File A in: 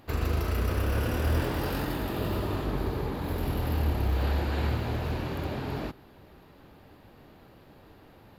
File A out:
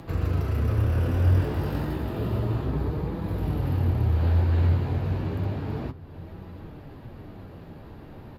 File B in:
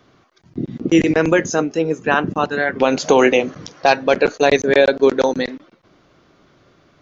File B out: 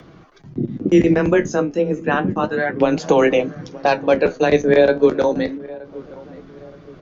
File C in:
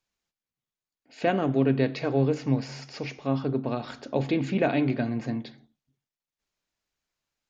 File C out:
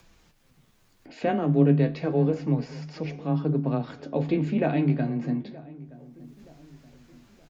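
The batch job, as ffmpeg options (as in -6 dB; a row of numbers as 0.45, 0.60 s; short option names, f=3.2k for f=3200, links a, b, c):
-filter_complex "[0:a]acompressor=mode=upward:threshold=-35dB:ratio=2.5,lowshelf=f=240:g=8.5,flanger=delay=6.1:depth=8.5:regen=54:speed=0.31:shape=sinusoidal,highshelf=f=3.1k:g=-7,asplit=2[a][b];[b]adelay=923,lowpass=f=1.2k:p=1,volume=-19.5dB,asplit=2[c][d];[d]adelay=923,lowpass=f=1.2k:p=1,volume=0.45,asplit=2[e][f];[f]adelay=923,lowpass=f=1.2k:p=1,volume=0.45[g];[a][c][e][g]amix=inputs=4:normalize=0,afreqshift=14,volume=1.5dB"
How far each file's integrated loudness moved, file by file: +4.0, -1.0, +1.5 LU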